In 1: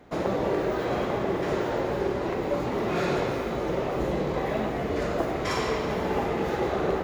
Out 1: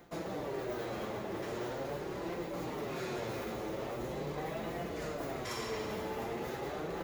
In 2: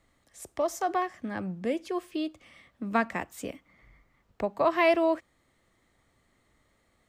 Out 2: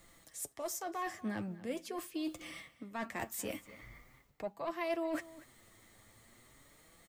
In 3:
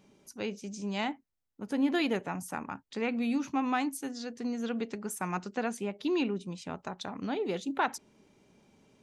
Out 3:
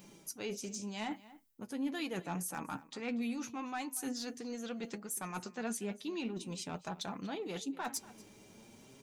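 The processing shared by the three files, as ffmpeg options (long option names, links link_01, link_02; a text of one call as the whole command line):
ffmpeg -i in.wav -filter_complex "[0:a]aemphasis=mode=production:type=50kf,areverse,acompressor=threshold=-41dB:ratio=8,areverse,aeval=exprs='0.0335*(cos(1*acos(clip(val(0)/0.0335,-1,1)))-cos(1*PI/2))+0.00531*(cos(5*acos(clip(val(0)/0.0335,-1,1)))-cos(5*PI/2))+0.00211*(cos(7*acos(clip(val(0)/0.0335,-1,1)))-cos(7*PI/2))':channel_layout=same,flanger=delay=5.8:depth=3.6:regen=41:speed=0.42:shape=sinusoidal,asplit=2[link_01][link_02];[link_02]adelay=239.1,volume=-18dB,highshelf=frequency=4000:gain=-5.38[link_03];[link_01][link_03]amix=inputs=2:normalize=0,volume=6dB" out.wav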